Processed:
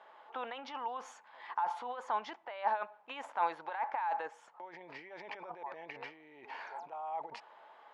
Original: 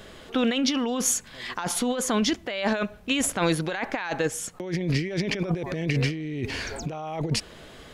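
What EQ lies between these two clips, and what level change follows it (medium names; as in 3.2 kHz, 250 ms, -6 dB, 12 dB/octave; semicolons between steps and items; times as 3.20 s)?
ladder band-pass 900 Hz, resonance 80%; peaking EQ 780 Hz -6 dB 0.21 oct; +2.5 dB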